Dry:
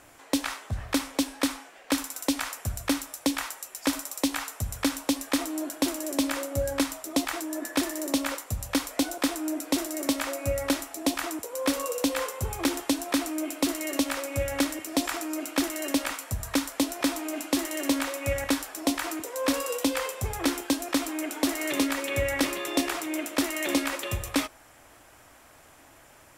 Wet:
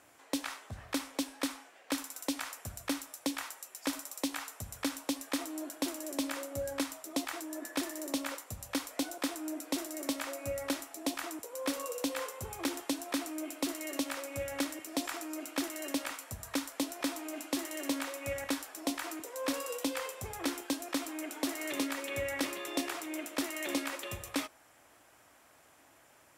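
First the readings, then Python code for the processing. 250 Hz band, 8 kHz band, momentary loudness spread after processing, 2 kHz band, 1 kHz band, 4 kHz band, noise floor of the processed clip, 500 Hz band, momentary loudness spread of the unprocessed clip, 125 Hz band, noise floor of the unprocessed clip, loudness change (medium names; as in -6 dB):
-8.5 dB, -7.5 dB, 5 LU, -7.5 dB, -7.5 dB, -7.5 dB, -62 dBFS, -8.0 dB, 5 LU, -13.0 dB, -54 dBFS, -8.0 dB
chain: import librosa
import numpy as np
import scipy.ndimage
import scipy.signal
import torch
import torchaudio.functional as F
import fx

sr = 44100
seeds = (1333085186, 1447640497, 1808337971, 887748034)

y = fx.highpass(x, sr, hz=150.0, slope=6)
y = y * 10.0 ** (-7.5 / 20.0)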